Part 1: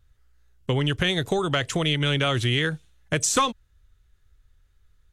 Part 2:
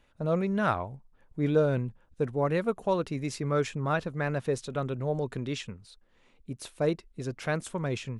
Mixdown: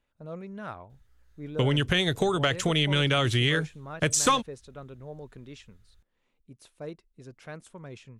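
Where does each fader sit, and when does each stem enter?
-1.0, -12.0 dB; 0.90, 0.00 s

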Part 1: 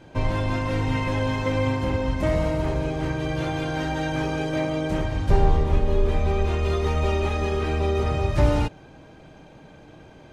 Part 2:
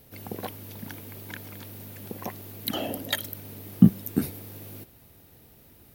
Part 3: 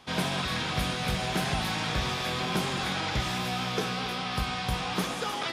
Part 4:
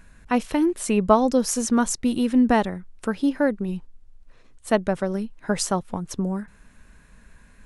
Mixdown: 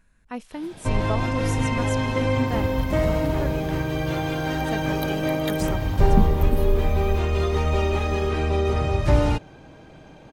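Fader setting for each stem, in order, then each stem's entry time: +1.0, -7.0, -19.5, -12.0 dB; 0.70, 2.35, 0.45, 0.00 s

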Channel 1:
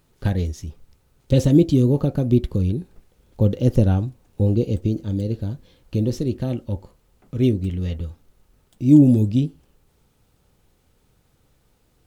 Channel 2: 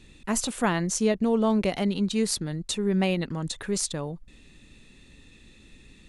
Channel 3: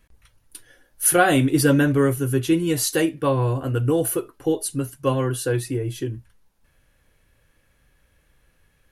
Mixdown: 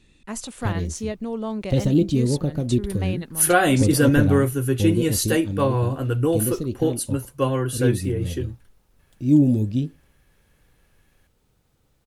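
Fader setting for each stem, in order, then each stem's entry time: -4.0, -5.5, -0.5 dB; 0.40, 0.00, 2.35 s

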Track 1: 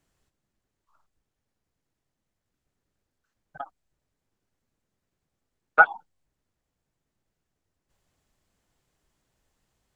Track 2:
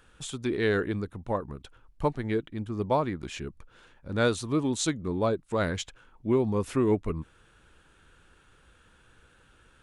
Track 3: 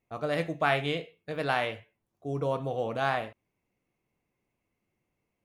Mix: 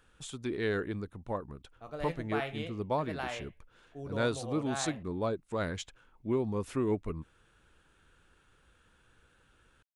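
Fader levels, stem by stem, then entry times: off, -6.0 dB, -10.0 dB; off, 0.00 s, 1.70 s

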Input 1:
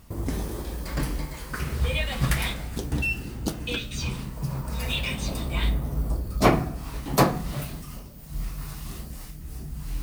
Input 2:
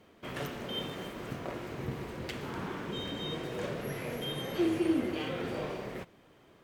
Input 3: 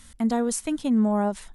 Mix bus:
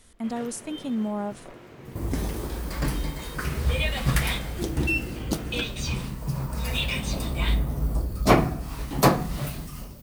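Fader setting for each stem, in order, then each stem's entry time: +1.0, -6.0, -6.5 dB; 1.85, 0.00, 0.00 s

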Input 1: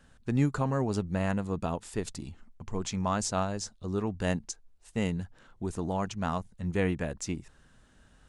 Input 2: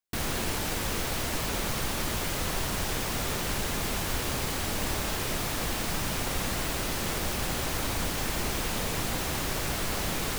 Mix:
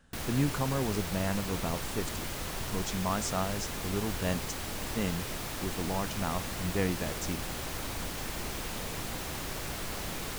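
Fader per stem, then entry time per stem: -2.5, -6.5 dB; 0.00, 0.00 s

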